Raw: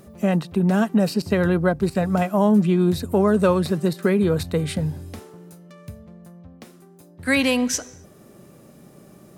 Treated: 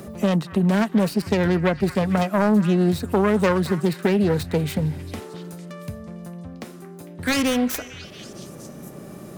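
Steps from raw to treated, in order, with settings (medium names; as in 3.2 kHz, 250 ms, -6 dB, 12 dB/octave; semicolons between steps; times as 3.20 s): self-modulated delay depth 0.31 ms; repeats whose band climbs or falls 226 ms, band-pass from 1.5 kHz, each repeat 0.7 oct, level -11.5 dB; three bands compressed up and down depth 40%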